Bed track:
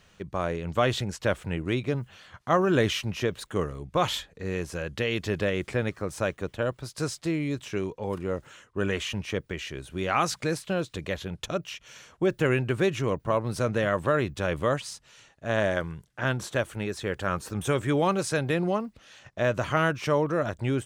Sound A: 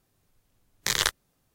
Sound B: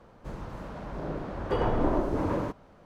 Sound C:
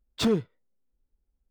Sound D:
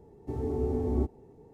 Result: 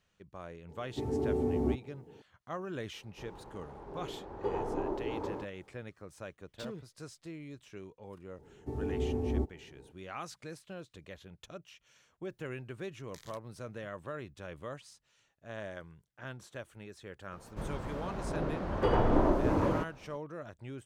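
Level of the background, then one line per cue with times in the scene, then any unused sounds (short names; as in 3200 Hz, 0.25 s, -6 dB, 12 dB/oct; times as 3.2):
bed track -17 dB
0.69 add D + HPF 100 Hz
2.93 add B -15 dB + small resonant body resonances 410/830 Hz, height 13 dB, ringing for 25 ms
6.4 add C -13.5 dB + limiter -23 dBFS
8.39 add D -3.5 dB
12.28 add A -16 dB + compressor 10:1, threshold -34 dBFS
17.32 add B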